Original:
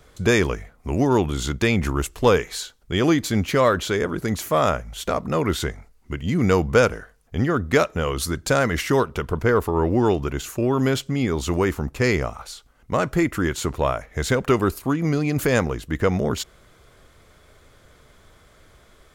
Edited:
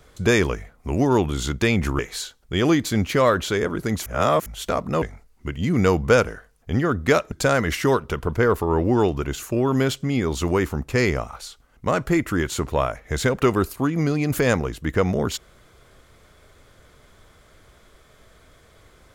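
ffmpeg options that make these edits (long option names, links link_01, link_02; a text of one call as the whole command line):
ffmpeg -i in.wav -filter_complex "[0:a]asplit=6[link_01][link_02][link_03][link_04][link_05][link_06];[link_01]atrim=end=1.992[link_07];[link_02]atrim=start=2.378:end=4.452[link_08];[link_03]atrim=start=4.448:end=4.852,asetpts=PTS-STARTPTS,areverse[link_09];[link_04]atrim=start=4.848:end=5.412[link_10];[link_05]atrim=start=5.668:end=7.972[link_11];[link_06]atrim=start=8.378[link_12];[link_07][link_08]acrossfade=duration=0.004:curve1=hsin:curve2=hsin[link_13];[link_13][link_09]acrossfade=duration=0.004:curve1=hsin:curve2=hsin[link_14];[link_14][link_10]acrossfade=duration=0.004:curve1=hsin:curve2=hsin[link_15];[link_15][link_11]acrossfade=duration=0.004:curve1=hsin:curve2=hsin[link_16];[link_16][link_12]acrossfade=duration=0.004:curve1=hsin:curve2=hsin" out.wav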